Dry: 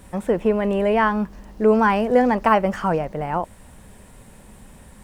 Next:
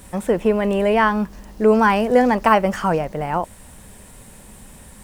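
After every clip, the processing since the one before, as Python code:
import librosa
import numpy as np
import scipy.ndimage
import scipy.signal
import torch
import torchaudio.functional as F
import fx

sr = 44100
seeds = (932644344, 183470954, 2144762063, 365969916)

y = fx.high_shelf(x, sr, hz=3600.0, db=7.5)
y = y * 10.0 ** (1.5 / 20.0)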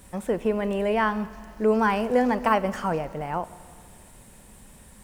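y = fx.rev_schroeder(x, sr, rt60_s=2.2, comb_ms=25, drr_db=15.5)
y = y * 10.0 ** (-7.0 / 20.0)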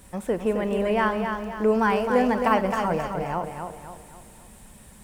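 y = fx.echo_feedback(x, sr, ms=263, feedback_pct=42, wet_db=-6)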